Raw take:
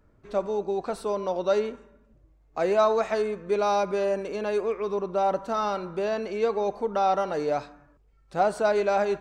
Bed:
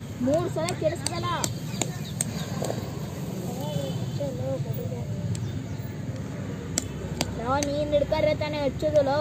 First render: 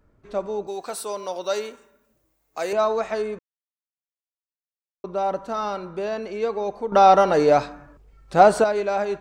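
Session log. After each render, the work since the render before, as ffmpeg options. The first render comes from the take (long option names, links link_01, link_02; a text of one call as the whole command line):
ffmpeg -i in.wav -filter_complex "[0:a]asettb=1/sr,asplit=3[link_01][link_02][link_03];[link_01]atrim=end=0.674[link_04];[link_02]atrim=start=0.67:end=2.73,asetpts=PTS-STARTPTS,afade=type=in:duration=0.004:curve=qsin,afade=type=out:start_time=2.056:duration=0.004:curve=qsin,aemphasis=mode=production:type=riaa[link_05];[link_03]atrim=start=2.726[link_06];[link_04][link_05]acrossfade=duration=0.004:curve1=hsin:curve2=qsin[link_07];[link_07][link_06]acrossfade=duration=0.004:curve1=qsin:curve2=hsin,asplit=5[link_08][link_09][link_10][link_11][link_12];[link_08]atrim=end=3.39,asetpts=PTS-STARTPTS,afade=type=out:start_time=3.386:duration=0.004:curve=hsin[link_13];[link_09]atrim=start=3.39:end=5.04,asetpts=PTS-STARTPTS,volume=0[link_14];[link_10]atrim=start=5.04:end=6.922,asetpts=PTS-STARTPTS,afade=type=in:duration=0.004:curve=hsin[link_15];[link_11]atrim=start=6.918:end=8.642,asetpts=PTS-STARTPTS,volume=10dB[link_16];[link_12]atrim=start=8.638[link_17];[link_13][link_14][link_15]concat=n=3:v=0:a=1[link_18];[link_18][link_16]acrossfade=duration=0.004:curve1=hsin:curve2=hsin[link_19];[link_19][link_17]acrossfade=duration=0.004:curve1=hsin:curve2=hsin" out.wav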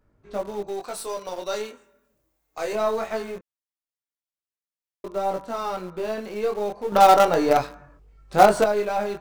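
ffmpeg -i in.wav -filter_complex "[0:a]flanger=delay=19:depth=5.3:speed=0.22,asplit=2[link_01][link_02];[link_02]acrusher=bits=3:dc=4:mix=0:aa=0.000001,volume=-9.5dB[link_03];[link_01][link_03]amix=inputs=2:normalize=0" out.wav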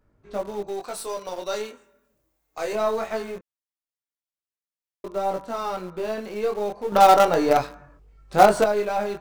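ffmpeg -i in.wav -af anull out.wav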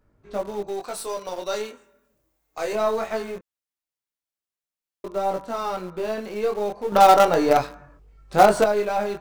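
ffmpeg -i in.wav -af "volume=1dB,alimiter=limit=-3dB:level=0:latency=1" out.wav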